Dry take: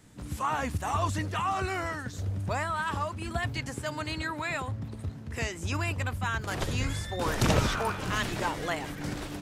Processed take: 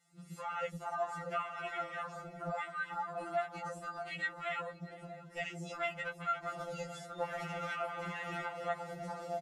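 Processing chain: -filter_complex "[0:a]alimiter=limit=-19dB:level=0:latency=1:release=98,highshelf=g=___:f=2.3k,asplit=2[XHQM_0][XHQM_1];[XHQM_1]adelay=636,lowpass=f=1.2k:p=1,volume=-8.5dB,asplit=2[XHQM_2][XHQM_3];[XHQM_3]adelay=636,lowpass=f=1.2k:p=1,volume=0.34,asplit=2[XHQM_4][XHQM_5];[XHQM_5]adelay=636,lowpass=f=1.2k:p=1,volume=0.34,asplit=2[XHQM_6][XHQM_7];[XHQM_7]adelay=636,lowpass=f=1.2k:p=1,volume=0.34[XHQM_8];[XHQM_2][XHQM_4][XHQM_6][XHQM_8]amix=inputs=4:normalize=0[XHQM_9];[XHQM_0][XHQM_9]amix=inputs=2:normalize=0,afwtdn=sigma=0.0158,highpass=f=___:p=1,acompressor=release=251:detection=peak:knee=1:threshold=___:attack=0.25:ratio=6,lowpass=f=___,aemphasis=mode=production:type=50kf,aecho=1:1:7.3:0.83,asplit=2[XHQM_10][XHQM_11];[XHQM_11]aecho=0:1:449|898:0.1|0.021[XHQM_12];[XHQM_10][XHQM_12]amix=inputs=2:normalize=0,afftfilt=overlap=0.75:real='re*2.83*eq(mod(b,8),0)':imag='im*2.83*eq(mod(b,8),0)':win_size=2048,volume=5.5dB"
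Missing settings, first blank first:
-7, 660, -38dB, 8.5k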